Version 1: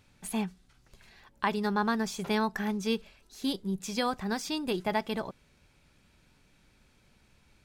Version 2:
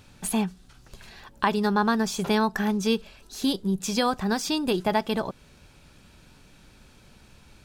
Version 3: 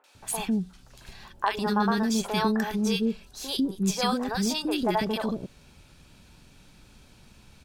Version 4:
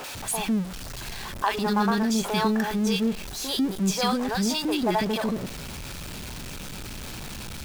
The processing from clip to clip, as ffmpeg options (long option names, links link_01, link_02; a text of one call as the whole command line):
ffmpeg -i in.wav -filter_complex "[0:a]equalizer=frequency=2100:width_type=o:width=0.32:gain=-5.5,asplit=2[link_01][link_02];[link_02]acompressor=threshold=-39dB:ratio=6,volume=2.5dB[link_03];[link_01][link_03]amix=inputs=2:normalize=0,volume=3.5dB" out.wav
ffmpeg -i in.wav -filter_complex "[0:a]acrossover=split=460|1500[link_01][link_02][link_03];[link_03]adelay=40[link_04];[link_01]adelay=150[link_05];[link_05][link_02][link_04]amix=inputs=3:normalize=0" out.wav
ffmpeg -i in.wav -af "aeval=exprs='val(0)+0.5*0.0266*sgn(val(0))':channel_layout=same" out.wav